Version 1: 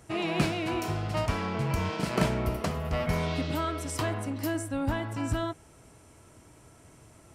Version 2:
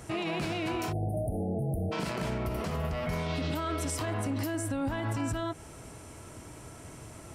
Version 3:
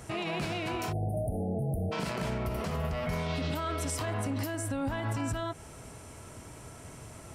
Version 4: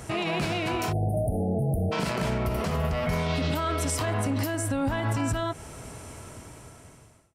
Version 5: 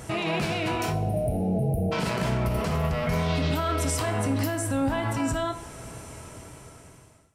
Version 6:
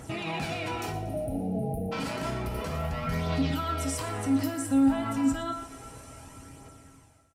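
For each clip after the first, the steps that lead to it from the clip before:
compressor, threshold -32 dBFS, peak gain reduction 12 dB; spectral delete 0.92–1.92, 830–8800 Hz; limiter -32 dBFS, peak gain reduction 11.5 dB; gain +8 dB
bell 320 Hz -5.5 dB 0.24 oct
ending faded out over 1.25 s; gain +5.5 dB
wow and flutter 21 cents; two-slope reverb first 0.53 s, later 3.2 s, from -18 dB, DRR 7.5 dB
resonator 270 Hz, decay 0.23 s, harmonics odd, mix 80%; phaser 0.3 Hz, delay 4.7 ms, feedback 37%; feedback echo 0.118 s, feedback 52%, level -14 dB; gain +6 dB

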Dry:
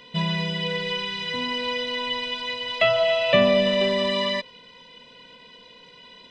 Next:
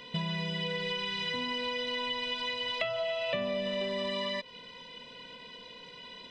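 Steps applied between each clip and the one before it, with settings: notch 6600 Hz, Q 24; compressor 6:1, threshold -31 dBFS, peak gain reduction 16.5 dB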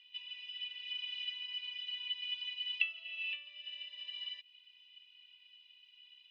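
ladder band-pass 2800 Hz, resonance 90%; upward expander 1.5:1, over -49 dBFS; gain +1 dB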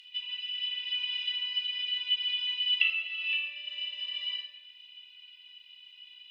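upward compressor, threshold -60 dBFS; reverb RT60 0.95 s, pre-delay 5 ms, DRR -0.5 dB; gain +5.5 dB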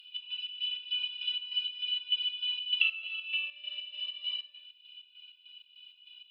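fixed phaser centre 1300 Hz, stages 8; chopper 3.3 Hz, depth 60%, duty 55%

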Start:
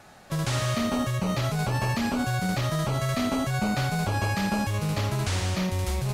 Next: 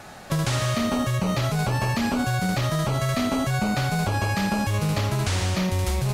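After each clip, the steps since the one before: compressor 4:1, threshold -30 dBFS, peak gain reduction 7.5 dB; gain +8.5 dB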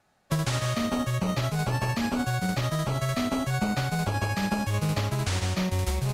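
upward expander 2.5:1, over -38 dBFS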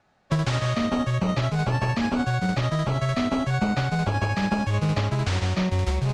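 air absorption 97 m; gain +3.5 dB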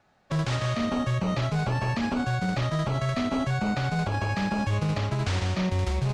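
limiter -18.5 dBFS, peak gain reduction 8 dB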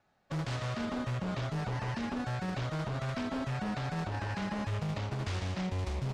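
Doppler distortion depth 0.39 ms; gain -8 dB

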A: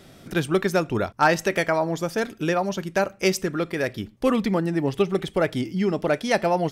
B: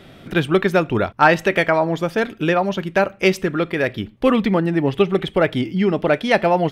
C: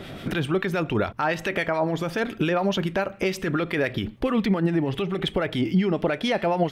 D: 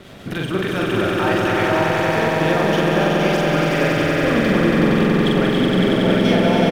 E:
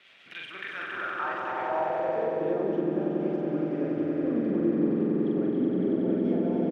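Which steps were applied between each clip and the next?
resonant high shelf 4300 Hz -8.5 dB, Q 1.5; gain +5 dB
compressor, threshold -22 dBFS, peak gain reduction 13.5 dB; limiter -20 dBFS, peak gain reduction 9.5 dB; harmonic tremolo 7.1 Hz, depth 50%, crossover 1200 Hz; gain +8 dB
crossover distortion -43 dBFS; doubler 44 ms -2 dB; swelling echo 93 ms, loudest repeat 5, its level -3.5 dB
band-pass sweep 2500 Hz -> 310 Hz, 0.42–2.9; gain -5 dB

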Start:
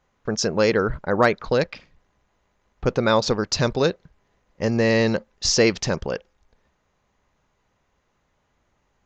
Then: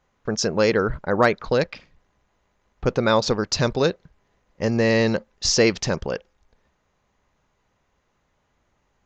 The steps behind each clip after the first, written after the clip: nothing audible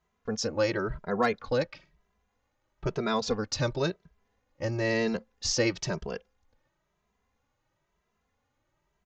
endless flanger 2.6 ms +1 Hz; gain -5 dB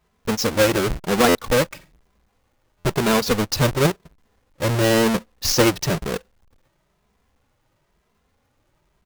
half-waves squared off; stuck buffer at 1.28/2.78, samples 512, times 5; gain +5.5 dB

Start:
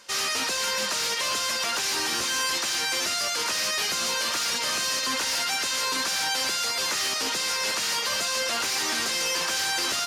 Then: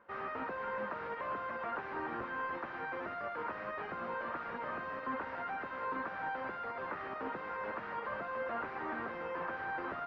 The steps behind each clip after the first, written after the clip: LPF 1500 Hz 24 dB/oct; gain -5.5 dB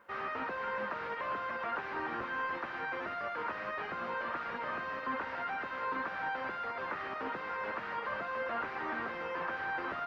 high shelf 2100 Hz +10.5 dB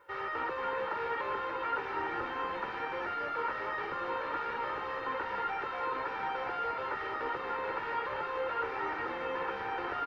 comb 2.2 ms, depth 85%; frequency-shifting echo 0.235 s, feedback 49%, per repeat -64 Hz, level -7.5 dB; gain -1 dB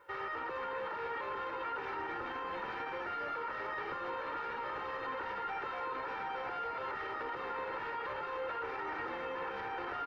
limiter -31 dBFS, peak gain reduction 8 dB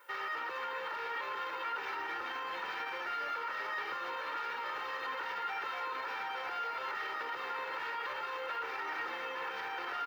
tilt +4 dB/oct

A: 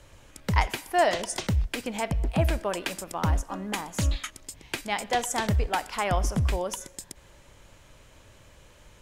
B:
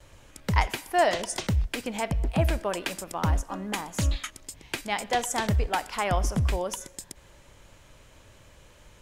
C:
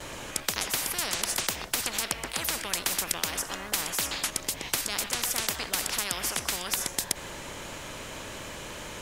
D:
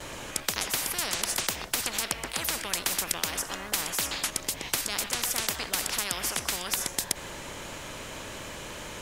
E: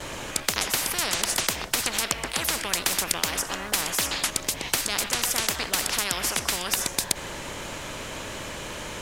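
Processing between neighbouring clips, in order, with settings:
gate with hold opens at -48 dBFS
spectral compressor 10:1
nothing audible
Doppler distortion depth 0.15 ms; gain +4.5 dB

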